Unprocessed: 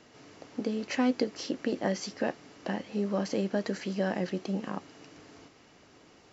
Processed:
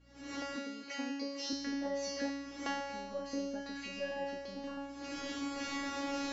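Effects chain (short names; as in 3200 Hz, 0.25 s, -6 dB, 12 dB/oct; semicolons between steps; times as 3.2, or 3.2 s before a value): recorder AGC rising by 69 dB/s; high shelf 5800 Hz -4 dB; resonator 280 Hz, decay 1.1 s, mix 100%; hum 60 Hz, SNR 25 dB; 0.56–1.53 HPF 210 Hz 12 dB/oct; gain +12 dB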